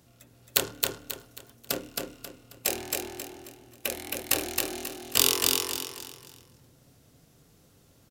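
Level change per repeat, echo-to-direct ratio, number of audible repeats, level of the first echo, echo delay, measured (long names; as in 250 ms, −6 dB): −9.5 dB, −2.5 dB, 4, −3.0 dB, 269 ms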